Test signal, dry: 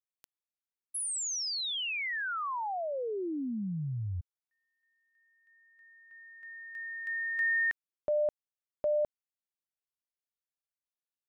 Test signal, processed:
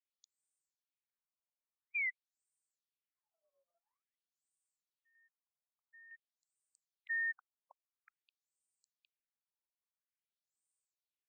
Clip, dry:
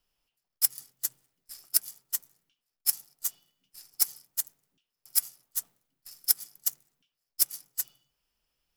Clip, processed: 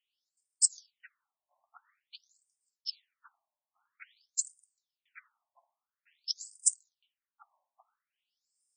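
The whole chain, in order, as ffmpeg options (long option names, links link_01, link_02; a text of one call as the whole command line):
ffmpeg -i in.wav -af "asubboost=boost=8.5:cutoff=190,aexciter=amount=7.6:drive=7.7:freq=8000,afftfilt=real='re*between(b*sr/1024,770*pow(6700/770,0.5+0.5*sin(2*PI*0.49*pts/sr))/1.41,770*pow(6700/770,0.5+0.5*sin(2*PI*0.49*pts/sr))*1.41)':imag='im*between(b*sr/1024,770*pow(6700/770,0.5+0.5*sin(2*PI*0.49*pts/sr))/1.41,770*pow(6700/770,0.5+0.5*sin(2*PI*0.49*pts/sr))*1.41)':win_size=1024:overlap=0.75" out.wav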